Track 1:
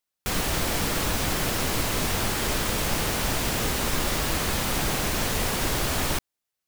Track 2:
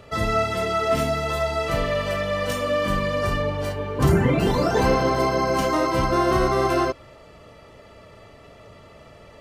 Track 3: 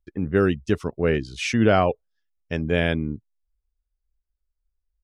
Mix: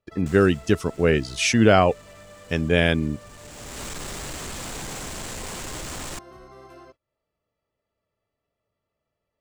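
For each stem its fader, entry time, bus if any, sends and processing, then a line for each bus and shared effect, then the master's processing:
−5.0 dB, 0.00 s, no send, running median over 3 samples; gain into a clipping stage and back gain 27.5 dB; parametric band 7,600 Hz +9.5 dB 0.48 octaves; automatic ducking −19 dB, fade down 0.60 s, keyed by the third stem
−13.5 dB, 0.00 s, no send, downward compressor 4 to 1, threshold −32 dBFS, peak gain reduction 15.5 dB
+2.0 dB, 0.00 s, no send, high-shelf EQ 4,900 Hz +11 dB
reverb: not used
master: noise gate −51 dBFS, range −22 dB

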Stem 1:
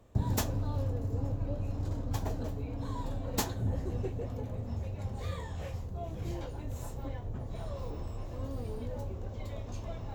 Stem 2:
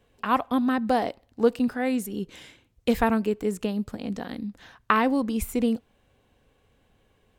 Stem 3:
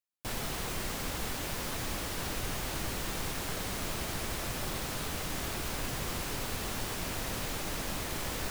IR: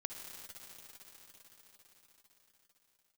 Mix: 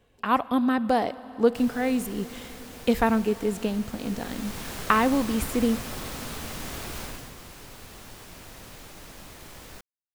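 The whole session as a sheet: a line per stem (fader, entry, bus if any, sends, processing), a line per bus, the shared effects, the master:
muted
−1.0 dB, 0.00 s, send −11.5 dB, no processing
0:03.91 −8.5 dB → 0:04.70 0 dB → 0:07.02 0 dB → 0:07.34 −9 dB, 1.30 s, no send, no processing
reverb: on, RT60 5.7 s, pre-delay 50 ms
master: no processing

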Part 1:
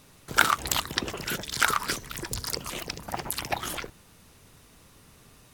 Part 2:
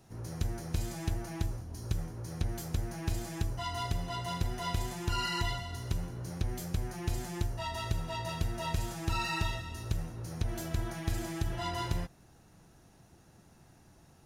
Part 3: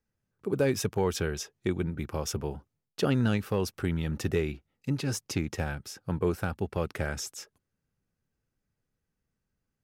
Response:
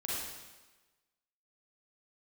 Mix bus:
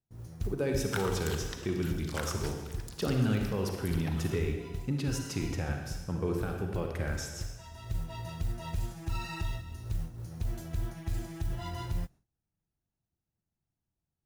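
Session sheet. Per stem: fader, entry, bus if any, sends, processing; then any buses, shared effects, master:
−18.5 dB, 0.55 s, no bus, send −6.5 dB, no processing
−1.5 dB, 0.00 s, bus A, no send, low-shelf EQ 190 Hz +7 dB; noise that follows the level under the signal 24 dB; expander for the loud parts 1.5 to 1, over −47 dBFS; automatic ducking −12 dB, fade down 0.95 s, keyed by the third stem
−19.0 dB, 0.00 s, bus A, send −3 dB, automatic gain control gain up to 11.5 dB
bus A: 0.0 dB, brickwall limiter −27.5 dBFS, peak gain reduction 10.5 dB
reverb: on, RT60 1.2 s, pre-delay 35 ms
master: noise gate with hold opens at −56 dBFS; low-shelf EQ 230 Hz +3.5 dB

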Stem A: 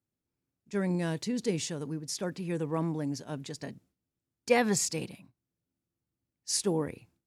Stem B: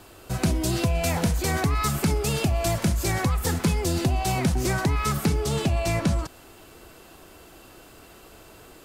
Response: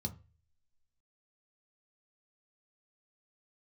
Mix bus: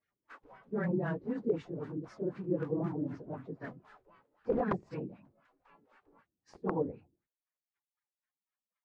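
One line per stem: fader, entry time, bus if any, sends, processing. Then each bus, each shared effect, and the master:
−5.0 dB, 0.00 s, no send, random phases in long frames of 50 ms
0:03.96 −9.5 dB → 0:04.45 −20.5 dB, 0.00 s, no send, gate on every frequency bin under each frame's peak −25 dB weak; automatic ducking −8 dB, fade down 0.40 s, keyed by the first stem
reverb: not used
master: wrap-around overflow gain 24 dB; auto-filter low-pass sine 3.9 Hz 340–1,600 Hz

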